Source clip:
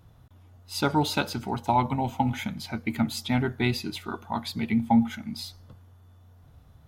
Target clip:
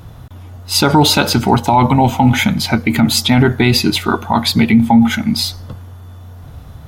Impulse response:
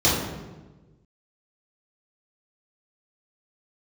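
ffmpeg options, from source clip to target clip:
-af "alimiter=level_in=20.5dB:limit=-1dB:release=50:level=0:latency=1,volume=-1dB"

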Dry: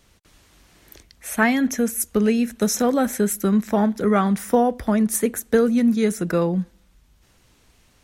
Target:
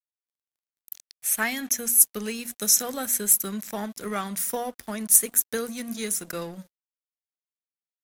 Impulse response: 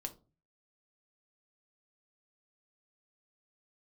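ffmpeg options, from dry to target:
-af "crystalizer=i=9:c=0,bandreject=f=60:t=h:w=6,bandreject=f=120:t=h:w=6,bandreject=f=180:t=h:w=6,bandreject=f=240:t=h:w=6,bandreject=f=300:t=h:w=6,aeval=exprs='sgn(val(0))*max(abs(val(0))-0.0299,0)':c=same,volume=-13dB"

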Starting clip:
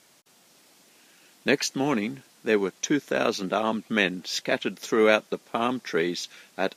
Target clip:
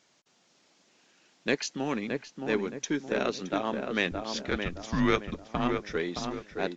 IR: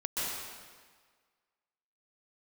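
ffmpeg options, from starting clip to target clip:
-filter_complex "[0:a]asettb=1/sr,asplit=3[a][b][c];[a]atrim=end=4.114[d];[b]atrim=start=4.11:end=5.35,asetpts=PTS-STARTPTS,afade=t=in:d=0.004:c=qsin,afade=t=out:st=1.236:d=0.004:c=qsin,afreqshift=-190[e];[c]atrim=start=5.346[f];[d][e]acrossfade=d=0.004:c1=hsin:c2=qsin[g];[g][f]acrossfade=d=0.004:c1=qsin:c2=hsin,aeval=exprs='0.531*(cos(1*acos(clip(val(0)/0.531,-1,1)))-cos(1*PI/2))+0.015*(cos(7*acos(clip(val(0)/0.531,-1,1)))-cos(7*PI/2))+0.00335*(cos(8*acos(clip(val(0)/0.531,-1,1)))-cos(8*PI/2))':c=same,asplit=2[h][i];[i]adelay=619,lowpass=f=1.5k:p=1,volume=-4.5dB,asplit=2[j][k];[k]adelay=619,lowpass=f=1.5k:p=1,volume=0.43,asplit=2[l][m];[m]adelay=619,lowpass=f=1.5k:p=1,volume=0.43,asplit=2[n][o];[o]adelay=619,lowpass=f=1.5k:p=1,volume=0.43,asplit=2[p][q];[q]adelay=619,lowpass=f=1.5k:p=1,volume=0.43[r];[j][l][n][p][r]amix=inputs=5:normalize=0[s];[h][s]amix=inputs=2:normalize=0,aresample=16000,aresample=44100,volume=-5dB"

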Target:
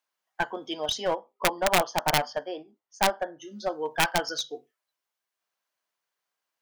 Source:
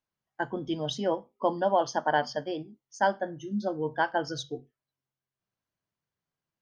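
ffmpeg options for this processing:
-filter_complex "[0:a]asettb=1/sr,asplit=3[a][b][c];[a]atrim=end=1.114[d];[b]atrim=start=1.11:end=3.42,asetpts=PTS-STARTPTS,afade=t=in:d=0.004:c=qsin,afade=t=out:st=2.306:d=0.004:c=qsin,highshelf=f=2.1k:g=-11.5[e];[c]atrim=start=3.416[f];[d][e]acrossfade=d=0.004:c1=hsin:c2=qsin[g];[g][f]acrossfade=d=0.004:c1=qsin:c2=hsin,aeval=exprs='(mod(6.31*val(0)+1,2)-1)/6.31':c=same,highpass=650,aeval=exprs='clip(val(0),-1,0.0299)':c=same,volume=7dB"

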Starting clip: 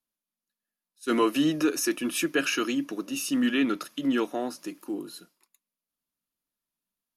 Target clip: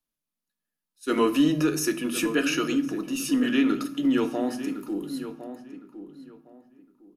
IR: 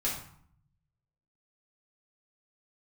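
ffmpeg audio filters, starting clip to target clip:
-filter_complex "[0:a]asplit=2[a][b];[b]adelay=1059,lowpass=f=1.8k:p=1,volume=-11dB,asplit=2[c][d];[d]adelay=1059,lowpass=f=1.8k:p=1,volume=0.24,asplit=2[e][f];[f]adelay=1059,lowpass=f=1.8k:p=1,volume=0.24[g];[a][c][e][g]amix=inputs=4:normalize=0,asplit=2[h][i];[1:a]atrim=start_sample=2205,lowshelf=f=500:g=10.5[j];[i][j]afir=irnorm=-1:irlink=0,volume=-13.5dB[k];[h][k]amix=inputs=2:normalize=0,volume=-2dB"

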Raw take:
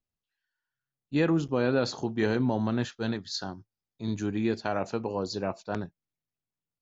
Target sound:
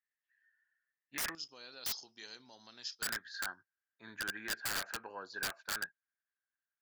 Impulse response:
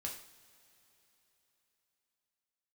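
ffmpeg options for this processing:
-af "acompressor=threshold=-29dB:ratio=2,asetnsamples=n=441:p=0,asendcmd='1.35 bandpass f 5100;3.02 bandpass f 1600',bandpass=f=1.8k:t=q:w=16:csg=0,aeval=exprs='(mod(251*val(0)+1,2)-1)/251':c=same,volume=18dB"

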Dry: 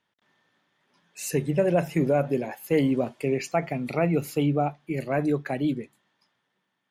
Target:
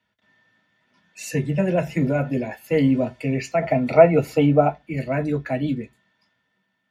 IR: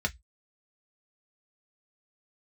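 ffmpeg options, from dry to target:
-filter_complex "[0:a]asettb=1/sr,asplit=3[a][b][c];[a]atrim=end=3.614[d];[b]atrim=start=3.61:end=4.78,asetpts=PTS-STARTPTS,afade=t=in:d=0.004:c=qsin,afade=t=out:st=1.166:d=0.004:c=qsin,equalizer=f=730:t=o:w=2:g=10[e];[c]atrim=start=4.776[f];[d][e]acrossfade=d=0.004:c1=hsin:c2=qsin[g];[g][f]acrossfade=d=0.004:c1=qsin:c2=hsin[h];[1:a]atrim=start_sample=2205,atrim=end_sample=6174[i];[h][i]afir=irnorm=-1:irlink=0,volume=-4dB"

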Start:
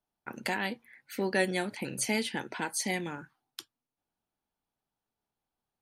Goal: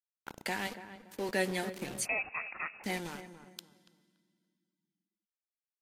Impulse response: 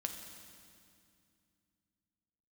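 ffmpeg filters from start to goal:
-filter_complex "[0:a]asettb=1/sr,asplit=3[a][b][c];[a]atrim=end=0.674[d];[b]atrim=start=0.67:end=1.29,asetpts=PTS-STARTPTS,afade=t=in:d=0.004:c=qsin,afade=t=out:st=0.616:d=0.004:c=qsin,highpass=290[e];[c]atrim=start=1.286[f];[d][e]acrossfade=d=0.004:c1=hsin:c2=qsin[g];[g][f]acrossfade=d=0.004:c1=qsin:c2=hsin,aeval=exprs='val(0)*gte(abs(val(0)),0.015)':c=same,asplit=2[h][i];[i]adelay=285,lowpass=f=1.3k:p=1,volume=-11dB,asplit=2[j][k];[k]adelay=285,lowpass=f=1.3k:p=1,volume=0.32,asplit=2[l][m];[m]adelay=285,lowpass=f=1.3k:p=1,volume=0.32[n];[h][j][l][n]amix=inputs=4:normalize=0,asplit=2[o][p];[1:a]atrim=start_sample=2205[q];[p][q]afir=irnorm=-1:irlink=0,volume=-12dB[r];[o][r]amix=inputs=2:normalize=0,asettb=1/sr,asplit=3[s][t][u];[s]atrim=end=2.054[v];[t]atrim=start=2.05:end=2.84,asetpts=PTS-STARTPTS,afade=t=in:d=0.004:c=qsin,afade=t=out:st=0.786:d=0.004:c=qsin,lowpass=f=2.4k:t=q:w=0.5098,lowpass=f=2.4k:t=q:w=0.6013,lowpass=f=2.4k:t=q:w=0.9,lowpass=f=2.4k:t=q:w=2.563,afreqshift=-2800[w];[u]atrim=start=2.836[x];[v][w]acrossfade=d=0.004:c1=hsin:c2=qsin[y];[y][x]acrossfade=d=0.004:c1=qsin:c2=hsin,volume=-5dB" -ar 44100 -c:a libvorbis -b:a 48k

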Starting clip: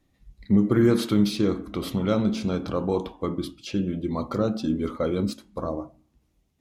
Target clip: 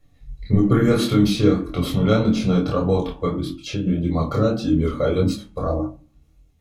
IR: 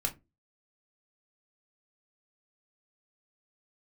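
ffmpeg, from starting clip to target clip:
-filter_complex "[1:a]atrim=start_sample=2205[a];[0:a][a]afir=irnorm=-1:irlink=0,flanger=delay=22.5:depth=6.4:speed=1.7,asplit=3[b][c][d];[b]afade=t=out:st=3.39:d=0.02[e];[c]acompressor=threshold=-27dB:ratio=4,afade=t=in:st=3.39:d=0.02,afade=t=out:st=3.86:d=0.02[f];[d]afade=t=in:st=3.86:d=0.02[g];[e][f][g]amix=inputs=3:normalize=0,volume=5dB"

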